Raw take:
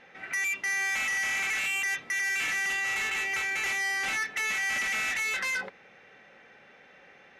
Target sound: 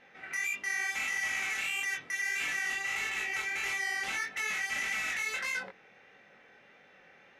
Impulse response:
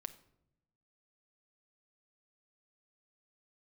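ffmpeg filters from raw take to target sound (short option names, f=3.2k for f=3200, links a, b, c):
-af "flanger=delay=19.5:depth=5.9:speed=1.6,volume=-1dB"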